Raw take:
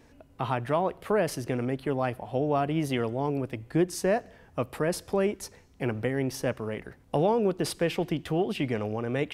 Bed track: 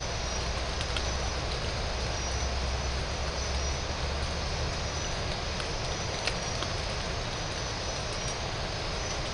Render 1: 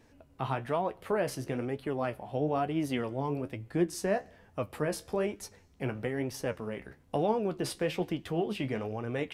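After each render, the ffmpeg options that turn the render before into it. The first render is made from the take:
-af "flanger=delay=9.2:depth=6:regen=51:speed=1.1:shape=sinusoidal"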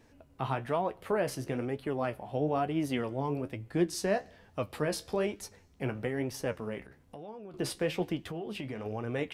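-filter_complex "[0:a]asettb=1/sr,asplit=3[s0][s1][s2];[s0]atrim=end=3.764[s3];[s1]atrim=start=3.76:end=5.41,asetpts=PTS-STARTPTS,afade=t=in:d=0.004:c=qsin,afade=t=out:st=1.646:d=0.004:c=qsin,equalizer=f=4100:t=o:w=0.96:g=6.5[s4];[s2]atrim=start=5.406[s5];[s3][s4]acrossfade=d=0.004:c1=hsin:c2=qsin[s6];[s6][s5]acrossfade=d=0.004:c1=qsin:c2=hsin,asettb=1/sr,asplit=3[s7][s8][s9];[s7]atrim=end=6.844[s10];[s8]atrim=start=6.84:end=7.54,asetpts=PTS-STARTPTS,afade=t=in:d=0.004:c=qsin,afade=t=out:st=0.696:d=0.004:c=qsin,acompressor=threshold=0.00316:ratio=2.5:attack=3.2:release=140:knee=1:detection=peak[s11];[s9]atrim=start=7.536[s12];[s10][s11]acrossfade=d=0.004:c1=hsin:c2=qsin[s13];[s13][s12]acrossfade=d=0.004:c1=qsin:c2=hsin,asettb=1/sr,asplit=3[s14][s15][s16];[s14]atrim=end=8.194[s17];[s15]atrim=start=8.19:end=8.86,asetpts=PTS-STARTPTS,afade=t=in:d=0.004:c=qsin,afade=t=out:st=0.666:d=0.004:c=qsin,acompressor=threshold=0.02:ratio=6:attack=3.2:release=140:knee=1:detection=peak[s18];[s16]atrim=start=8.856[s19];[s17][s18]acrossfade=d=0.004:c1=hsin:c2=qsin[s20];[s20][s19]acrossfade=d=0.004:c1=qsin:c2=hsin"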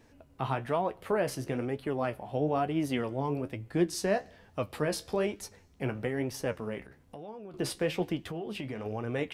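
-af "volume=1.12"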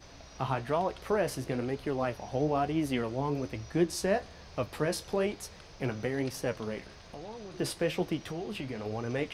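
-filter_complex "[1:a]volume=0.112[s0];[0:a][s0]amix=inputs=2:normalize=0"

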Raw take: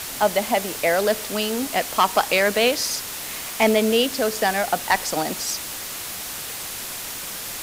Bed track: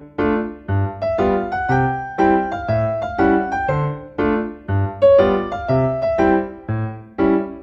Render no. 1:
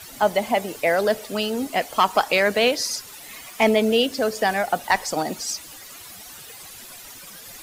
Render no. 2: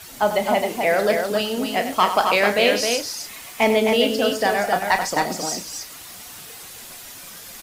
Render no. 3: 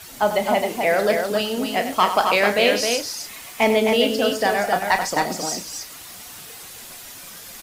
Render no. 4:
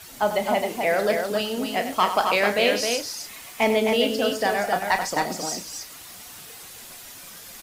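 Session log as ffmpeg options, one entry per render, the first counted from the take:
-af "afftdn=nr=13:nf=-32"
-filter_complex "[0:a]asplit=2[s0][s1];[s1]adelay=34,volume=0.335[s2];[s0][s2]amix=inputs=2:normalize=0,aecho=1:1:96|264:0.299|0.562"
-af anull
-af "volume=0.708"

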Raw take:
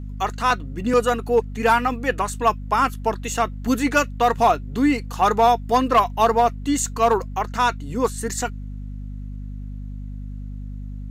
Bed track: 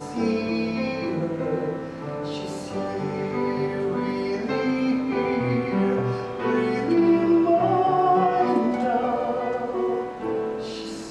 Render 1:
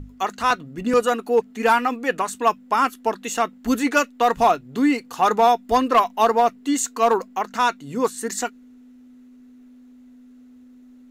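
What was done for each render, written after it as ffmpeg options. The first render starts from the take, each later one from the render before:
-af "bandreject=f=50:t=h:w=6,bandreject=f=100:t=h:w=6,bandreject=f=150:t=h:w=6,bandreject=f=200:t=h:w=6"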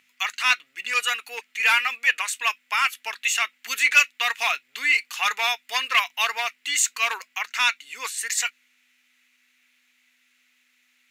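-filter_complex "[0:a]highpass=f=2300:t=q:w=3.5,asplit=2[s0][s1];[s1]asoftclip=type=tanh:threshold=0.141,volume=0.501[s2];[s0][s2]amix=inputs=2:normalize=0"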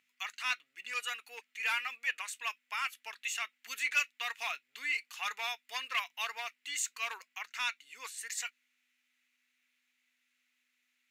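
-af "volume=0.211"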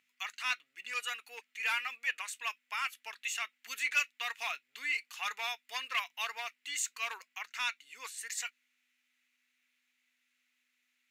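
-af anull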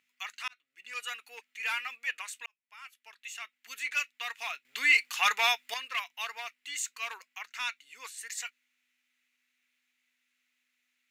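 -filter_complex "[0:a]asplit=5[s0][s1][s2][s3][s4];[s0]atrim=end=0.48,asetpts=PTS-STARTPTS,afade=t=out:st=0.476:d=0.004:c=hsin[s5];[s1]atrim=start=0.48:end=2.46,asetpts=PTS-STARTPTS,afade=t=in:d=0.62,afade=t=out:st=1.976:d=0.004:c=hsin[s6];[s2]atrim=start=2.46:end=4.652,asetpts=PTS-STARTPTS,afade=t=in:d=1.69[s7];[s3]atrim=start=4.648:end=5.742,asetpts=PTS-STARTPTS,volume=3.55[s8];[s4]atrim=start=5.738[s9];[s5][s6][s7]concat=n=3:v=0:a=1[s10];[s10][s8]acrossfade=d=0.004:c1=hsin:c2=hsin[s11];[s11][s9]acrossfade=d=0.004:c1=hsin:c2=hsin"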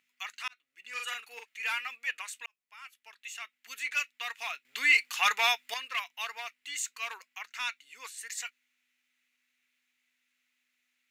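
-filter_complex "[0:a]asettb=1/sr,asplit=3[s0][s1][s2];[s0]atrim=end=0.894[s3];[s1]atrim=start=0.89:end=1.59,asetpts=PTS-STARTPTS,afade=t=in:d=0.004:c=qsin,afade=t=out:st=0.696:d=0.004:c=qsin,asplit=2[s4][s5];[s5]adelay=42,volume=0.708[s6];[s4][s6]amix=inputs=2:normalize=0,atrim=end_sample=30870[s7];[s2]atrim=start=1.586[s8];[s3][s7]acrossfade=d=0.004:c1=hsin:c2=qsin[s9];[s9][s8]acrossfade=d=0.004:c1=qsin:c2=hsin"

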